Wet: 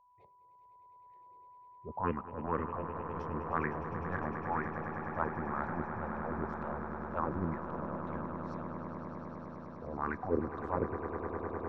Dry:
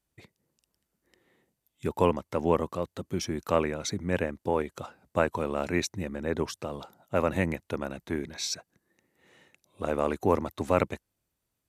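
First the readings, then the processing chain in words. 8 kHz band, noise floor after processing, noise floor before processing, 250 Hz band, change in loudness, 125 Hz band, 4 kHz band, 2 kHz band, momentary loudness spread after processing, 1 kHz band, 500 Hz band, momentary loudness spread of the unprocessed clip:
under -35 dB, -61 dBFS, -83 dBFS, -6.5 dB, -7.5 dB, -5.5 dB, under -25 dB, -5.0 dB, 11 LU, -2.5 dB, -10.0 dB, 9 LU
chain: de-hum 399 Hz, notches 9; transient shaper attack -12 dB, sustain +1 dB; LFO low-pass sine 2 Hz 390–1800 Hz; whistle 990 Hz -54 dBFS; touch-sensitive phaser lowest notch 240 Hz, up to 1.2 kHz, full sweep at -17 dBFS; on a send: echo with a slow build-up 102 ms, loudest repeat 8, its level -12 dB; on the sum: trim -4 dB

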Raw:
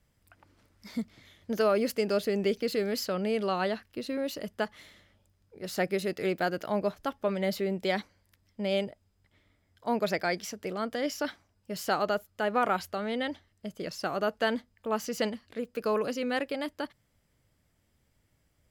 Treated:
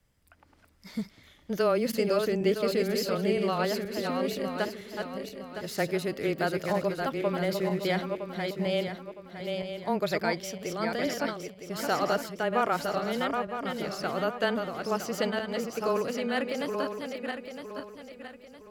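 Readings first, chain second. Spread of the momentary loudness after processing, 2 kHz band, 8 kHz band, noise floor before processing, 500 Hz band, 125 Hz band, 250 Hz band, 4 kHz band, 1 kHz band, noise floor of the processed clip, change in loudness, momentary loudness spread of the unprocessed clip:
12 LU, +1.5 dB, +2.0 dB, -72 dBFS, +2.0 dB, +5.0 dB, +2.0 dB, +2.0 dB, +1.5 dB, -59 dBFS, +1.0 dB, 10 LU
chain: backward echo that repeats 481 ms, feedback 59%, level -4.5 dB; frequency shift -14 Hz

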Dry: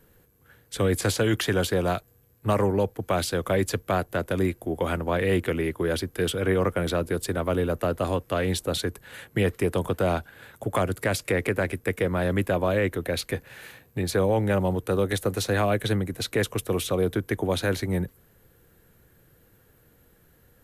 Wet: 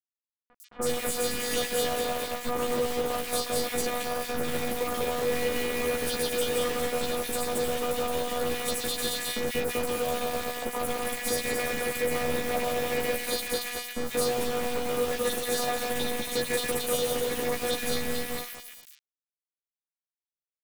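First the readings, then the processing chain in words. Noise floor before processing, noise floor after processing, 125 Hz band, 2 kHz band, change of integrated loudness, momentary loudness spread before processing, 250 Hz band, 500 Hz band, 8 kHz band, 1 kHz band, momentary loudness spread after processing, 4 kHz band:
-60 dBFS, under -85 dBFS, -15.5 dB, -1.5 dB, -2.5 dB, 6 LU, -7.5 dB, -3.0 dB, +4.5 dB, -0.5 dB, 4 LU, +2.5 dB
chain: backward echo that repeats 112 ms, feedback 61%, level -4 dB; treble shelf 2.7 kHz +9 dB; compression, threshold -25 dBFS, peak gain reduction 9 dB; peak limiter -22 dBFS, peak gain reduction 9 dB; robot voice 244 Hz; bit crusher 6-bit; doubling 14 ms -3 dB; three bands offset in time lows, highs, mids 100/140 ms, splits 1.7/6 kHz; trim +3.5 dB

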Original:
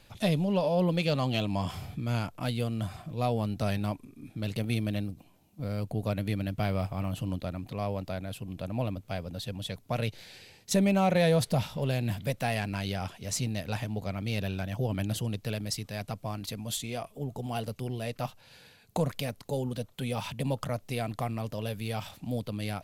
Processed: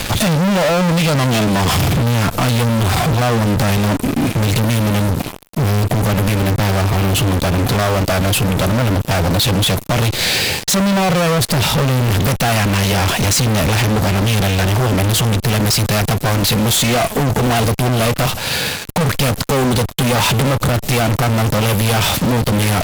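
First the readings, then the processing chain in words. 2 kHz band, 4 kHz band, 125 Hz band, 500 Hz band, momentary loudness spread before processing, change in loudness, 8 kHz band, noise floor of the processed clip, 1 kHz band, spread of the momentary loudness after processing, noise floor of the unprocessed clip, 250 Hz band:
+20.0 dB, +20.5 dB, +17.0 dB, +14.0 dB, 10 LU, +16.5 dB, +21.5 dB, -29 dBFS, +17.5 dB, 2 LU, -59 dBFS, +15.0 dB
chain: compression 12:1, threshold -33 dBFS, peak gain reduction 13 dB; fuzz box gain 58 dB, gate -58 dBFS

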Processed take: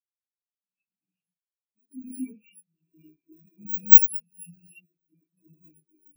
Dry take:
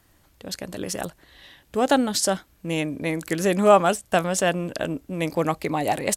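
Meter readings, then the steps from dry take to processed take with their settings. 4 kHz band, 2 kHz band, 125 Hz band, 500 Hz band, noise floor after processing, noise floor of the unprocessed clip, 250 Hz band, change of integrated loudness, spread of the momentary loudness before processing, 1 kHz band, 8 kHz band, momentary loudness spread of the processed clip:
under -25 dB, under -25 dB, under -25 dB, under -40 dB, under -85 dBFS, -60 dBFS, -16.5 dB, +9.0 dB, 14 LU, under -40 dB, -9.5 dB, 20 LU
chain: bit-reversed sample order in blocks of 64 samples; peaking EQ 2.6 kHz +8.5 dB 0.76 oct; tape echo 88 ms, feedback 55%, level -11 dB, low-pass 3.8 kHz; gated-style reverb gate 320 ms rising, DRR -6.5 dB; spectral contrast expander 4:1; trim -6 dB

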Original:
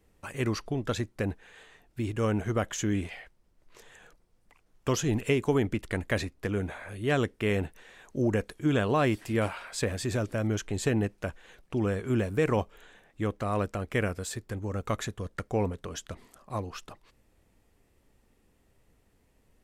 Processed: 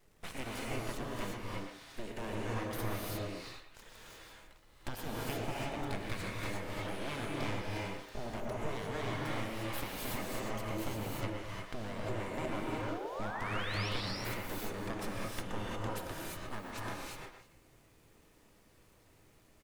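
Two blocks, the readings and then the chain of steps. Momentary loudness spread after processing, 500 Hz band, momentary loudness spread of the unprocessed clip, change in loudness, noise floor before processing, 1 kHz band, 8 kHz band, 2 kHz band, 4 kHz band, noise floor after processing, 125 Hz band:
9 LU, -10.0 dB, 12 LU, -9.0 dB, -67 dBFS, -4.0 dB, -8.0 dB, -5.5 dB, -2.0 dB, -64 dBFS, -10.0 dB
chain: compression 5:1, threshold -37 dBFS, peak gain reduction 15 dB; full-wave rectifier; crackle 290 per s -61 dBFS; painted sound rise, 12.42–13.89 s, 210–5800 Hz -47 dBFS; speakerphone echo 120 ms, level -7 dB; gated-style reverb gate 380 ms rising, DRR -4 dB

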